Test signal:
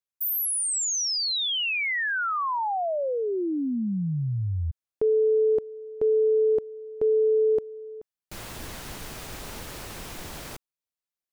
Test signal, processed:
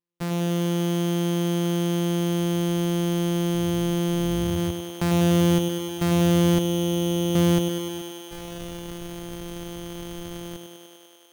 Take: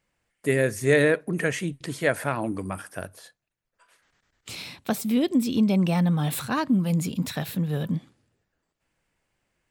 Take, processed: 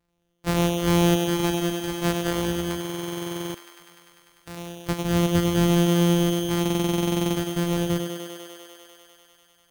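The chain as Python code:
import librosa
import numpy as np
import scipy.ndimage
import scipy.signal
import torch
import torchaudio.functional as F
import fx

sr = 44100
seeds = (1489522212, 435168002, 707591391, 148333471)

y = np.r_[np.sort(x[:len(x) // 256 * 256].reshape(-1, 256), axis=1).ravel(), x[len(x) // 256 * 256:]]
y = 10.0 ** (-14.5 / 20.0) * np.tanh(y / 10.0 ** (-14.5 / 20.0))
y = fx.echo_thinned(y, sr, ms=99, feedback_pct=85, hz=220.0, wet_db=-5.0)
y = fx.buffer_glitch(y, sr, at_s=(2.8, 6.61), block=2048, repeats=15)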